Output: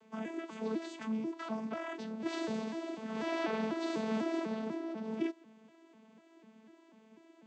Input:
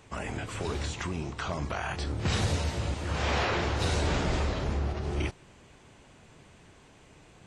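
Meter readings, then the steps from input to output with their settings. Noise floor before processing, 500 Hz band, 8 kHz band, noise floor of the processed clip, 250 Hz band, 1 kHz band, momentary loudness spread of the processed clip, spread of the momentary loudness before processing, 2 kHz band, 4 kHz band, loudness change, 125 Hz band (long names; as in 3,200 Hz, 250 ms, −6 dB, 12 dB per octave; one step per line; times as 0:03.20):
−56 dBFS, −3.5 dB, −16.0 dB, −63 dBFS, +0.5 dB, −8.0 dB, 6 LU, 7 LU, −10.0 dB, −12.5 dB, −6.5 dB, −21.0 dB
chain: vocoder with an arpeggio as carrier bare fifth, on A3, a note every 247 ms
level −3.5 dB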